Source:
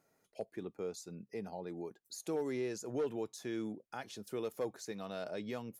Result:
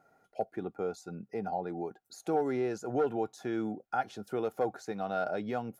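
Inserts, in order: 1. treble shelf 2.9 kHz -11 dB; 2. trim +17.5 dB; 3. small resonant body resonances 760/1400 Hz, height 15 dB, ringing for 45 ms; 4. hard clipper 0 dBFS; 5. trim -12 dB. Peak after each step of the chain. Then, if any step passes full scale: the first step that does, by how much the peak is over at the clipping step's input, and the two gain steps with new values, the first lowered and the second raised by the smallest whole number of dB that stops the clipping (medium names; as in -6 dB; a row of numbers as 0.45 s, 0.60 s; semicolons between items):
-28.0 dBFS, -10.5 dBFS, -5.5 dBFS, -5.5 dBFS, -17.5 dBFS; nothing clips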